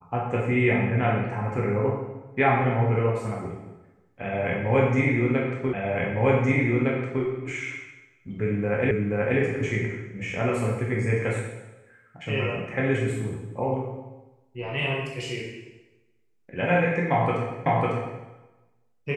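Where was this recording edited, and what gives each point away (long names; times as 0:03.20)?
0:05.73: the same again, the last 1.51 s
0:08.91: the same again, the last 0.48 s
0:17.66: the same again, the last 0.55 s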